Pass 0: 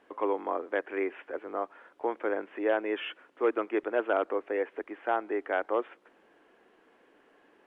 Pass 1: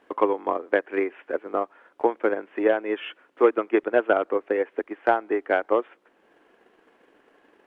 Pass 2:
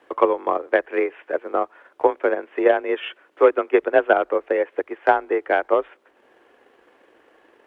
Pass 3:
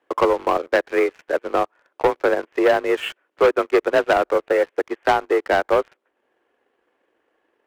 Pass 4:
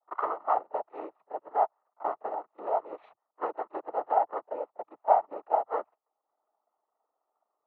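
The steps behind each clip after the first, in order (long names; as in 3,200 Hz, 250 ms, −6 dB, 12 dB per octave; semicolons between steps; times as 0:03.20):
transient designer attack +9 dB, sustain −3 dB; level +2.5 dB
in parallel at −2 dB: output level in coarse steps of 9 dB; on the sum: frequency shifter +36 Hz
leveller curve on the samples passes 3; level −7 dB
formant resonators in series a; cochlear-implant simulation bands 12; echo ahead of the sound 35 ms −22.5 dB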